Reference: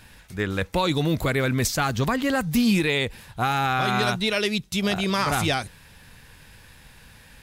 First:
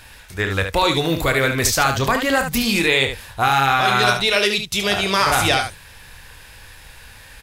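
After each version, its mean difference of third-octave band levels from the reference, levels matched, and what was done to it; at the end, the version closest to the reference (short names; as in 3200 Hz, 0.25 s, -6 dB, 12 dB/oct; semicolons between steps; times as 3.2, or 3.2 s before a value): 4.0 dB: bell 190 Hz -11 dB 1.5 oct; on a send: early reflections 30 ms -9.5 dB, 73 ms -7.5 dB; on the sum: gain +7 dB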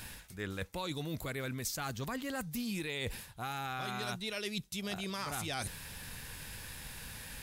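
7.0 dB: high shelf 5700 Hz +9.5 dB; reverse; compressor 6:1, threshold -38 dBFS, peak gain reduction 20.5 dB; reverse; gain +1 dB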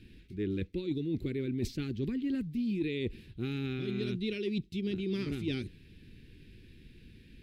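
10.5 dB: EQ curve 150 Hz 0 dB, 370 Hz +9 dB, 690 Hz -30 dB, 1100 Hz -27 dB, 2400 Hz -6 dB, 4200 Hz -8 dB, 6600 Hz -20 dB; reverse; compressor 12:1, threshold -27 dBFS, peak gain reduction 14.5 dB; reverse; gain -3 dB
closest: first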